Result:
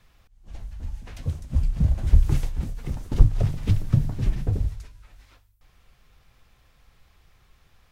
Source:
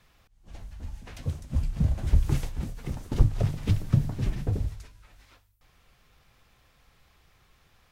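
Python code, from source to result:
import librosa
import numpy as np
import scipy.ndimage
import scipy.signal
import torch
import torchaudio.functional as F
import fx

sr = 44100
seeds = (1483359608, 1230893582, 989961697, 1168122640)

y = fx.low_shelf(x, sr, hz=74.0, db=8.0)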